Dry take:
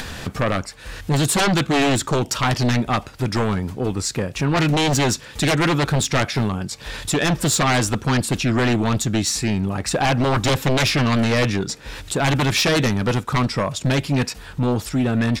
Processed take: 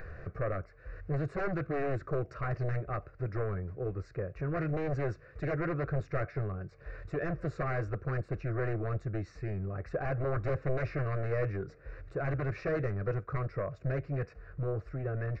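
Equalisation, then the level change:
high-frequency loss of the air 70 metres
head-to-tape spacing loss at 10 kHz 44 dB
phaser with its sweep stopped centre 890 Hz, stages 6
−7.5 dB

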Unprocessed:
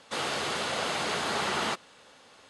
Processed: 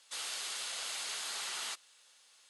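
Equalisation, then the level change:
first difference
0.0 dB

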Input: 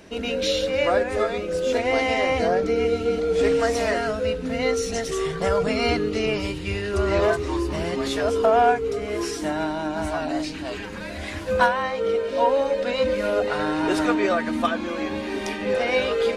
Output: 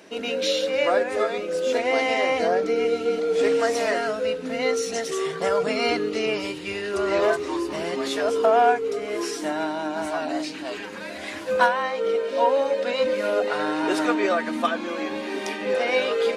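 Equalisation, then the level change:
high-pass filter 260 Hz 12 dB per octave
0.0 dB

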